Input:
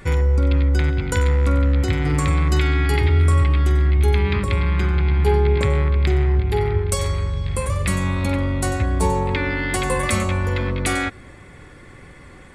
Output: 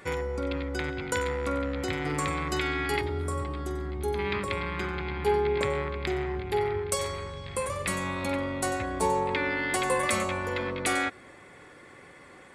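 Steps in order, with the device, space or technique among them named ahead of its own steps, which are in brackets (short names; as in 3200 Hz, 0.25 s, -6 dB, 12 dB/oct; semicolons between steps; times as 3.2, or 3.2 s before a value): 3.01–4.19 bell 2400 Hz -12.5 dB 1.5 oct; filter by subtraction (in parallel: LPF 560 Hz 12 dB/oct + phase invert); on the sum: gain -5 dB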